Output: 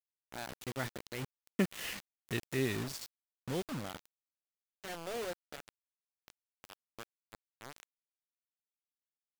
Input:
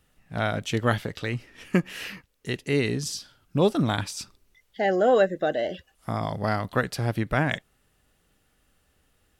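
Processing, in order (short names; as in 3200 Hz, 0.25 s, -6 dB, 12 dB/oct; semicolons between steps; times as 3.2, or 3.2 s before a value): Doppler pass-by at 2.03, 32 m/s, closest 13 m; requantised 6-bit, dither none; gain -5 dB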